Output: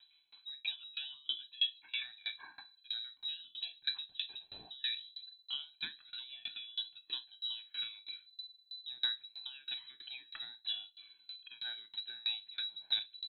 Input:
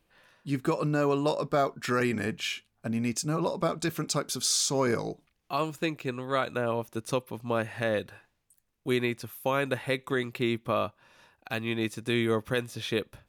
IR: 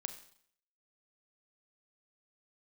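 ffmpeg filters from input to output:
-filter_complex "[0:a]highshelf=f=2.3k:g=-11,aecho=1:1:1.3:0.73,asubboost=boost=10:cutoff=57,acompressor=threshold=-37dB:ratio=3,aphaser=in_gain=1:out_gain=1:delay=1.9:decay=0.61:speed=0.23:type=triangular,asplit=2[a][b];[b]adelay=138,lowpass=f=1.8k:p=1,volume=-22dB,asplit=2[c][d];[d]adelay=138,lowpass=f=1.8k:p=1,volume=0.47,asplit=2[e][f];[f]adelay=138,lowpass=f=1.8k:p=1,volume=0.47[g];[a][c][e][g]amix=inputs=4:normalize=0[h];[1:a]atrim=start_sample=2205,afade=t=out:st=0.14:d=0.01,atrim=end_sample=6615,asetrate=57330,aresample=44100[i];[h][i]afir=irnorm=-1:irlink=0,lowpass=f=3.4k:t=q:w=0.5098,lowpass=f=3.4k:t=q:w=0.6013,lowpass=f=3.4k:t=q:w=0.9,lowpass=f=3.4k:t=q:w=2.563,afreqshift=-4000,aeval=exprs='val(0)*pow(10,-27*if(lt(mod(3.1*n/s,1),2*abs(3.1)/1000),1-mod(3.1*n/s,1)/(2*abs(3.1)/1000),(mod(3.1*n/s,1)-2*abs(3.1)/1000)/(1-2*abs(3.1)/1000))/20)':c=same,volume=5.5dB"

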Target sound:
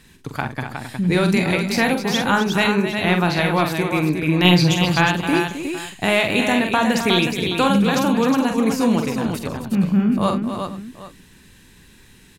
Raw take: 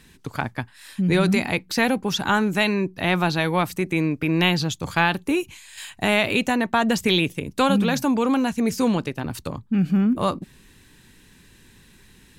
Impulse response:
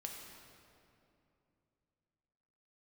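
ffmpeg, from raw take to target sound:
-filter_complex "[0:a]asettb=1/sr,asplit=3[a][b][c];[a]atrim=end=4.444[d];[b]atrim=start=4.44:end=4.85,asetpts=PTS-STARTPTS,afade=t=in:d=0.004:c=qsin,afade=t=out:st=0.406:d=0.004:c=qsin,aecho=1:1:5.8:0.97,atrim=end_sample=18081[e];[c]atrim=start=4.846[f];[d][e]acrossfade=d=0.004:c1=hsin:c2=qsin[g];[g][f]acrossfade=d=0.004:c1=qsin:c2=hsin,aecho=1:1:45|74|263|362|461|775:0.473|0.112|0.335|0.501|0.112|0.141,volume=1dB"

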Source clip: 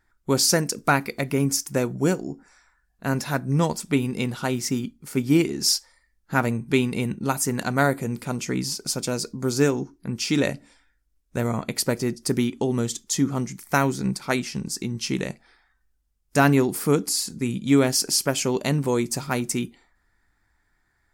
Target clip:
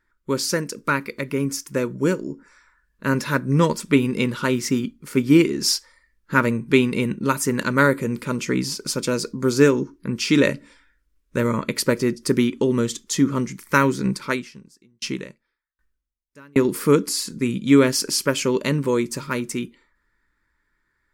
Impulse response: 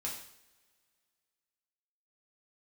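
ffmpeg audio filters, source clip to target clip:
-filter_complex "[0:a]bass=f=250:g=-3,treble=f=4k:g=-7,dynaudnorm=f=150:g=31:m=11.5dB,asuperstop=centerf=740:order=4:qfactor=2.4,equalizer=f=88:w=1.7:g=-5.5,asettb=1/sr,asplit=3[a][b][c];[a]atrim=end=14.254[d];[b]atrim=start=14.25:end=16.65,asetpts=PTS-STARTPTS,afade=t=in:d=0.004:c=qsin,afade=t=out:st=2.396:d=0.004:c=qsin,aeval=exprs='val(0)*pow(10,-38*if(lt(mod(1.3*n/s,1),2*abs(1.3)/1000),1-mod(1.3*n/s,1)/(2*abs(1.3)/1000),(mod(1.3*n/s,1)-2*abs(1.3)/1000)/(1-2*abs(1.3)/1000))/20)':c=same[e];[c]atrim=start=16.646[f];[d][e]acrossfade=d=0.004:c1=hsin:c2=qsin[g];[g][f]acrossfade=d=0.004:c1=qsin:c2=hsin"

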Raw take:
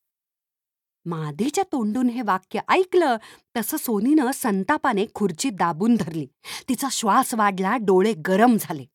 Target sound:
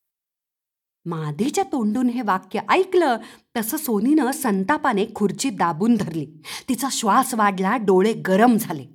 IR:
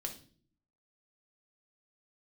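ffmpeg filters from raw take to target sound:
-filter_complex "[0:a]asplit=2[a][b];[1:a]atrim=start_sample=2205,afade=t=out:st=0.31:d=0.01,atrim=end_sample=14112,lowshelf=f=230:g=6.5[c];[b][c]afir=irnorm=-1:irlink=0,volume=-14dB[d];[a][d]amix=inputs=2:normalize=0"

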